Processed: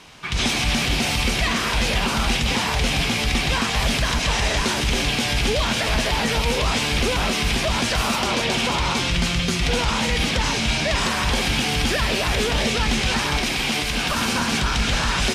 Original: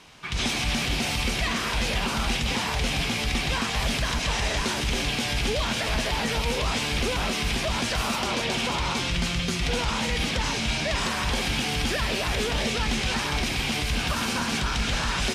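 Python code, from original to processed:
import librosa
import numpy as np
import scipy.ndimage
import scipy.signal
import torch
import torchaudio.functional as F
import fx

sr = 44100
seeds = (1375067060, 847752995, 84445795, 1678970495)

y = fx.peak_eq(x, sr, hz=77.0, db=-13.0, octaves=1.2, at=(13.37, 14.15))
y = y * 10.0 ** (5.0 / 20.0)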